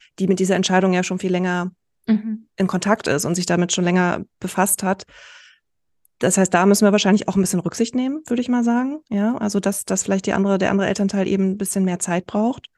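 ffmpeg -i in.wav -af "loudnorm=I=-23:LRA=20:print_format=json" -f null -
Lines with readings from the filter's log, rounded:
"input_i" : "-19.8",
"input_tp" : "-3.4",
"input_lra" : "1.6",
"input_thresh" : "-30.1",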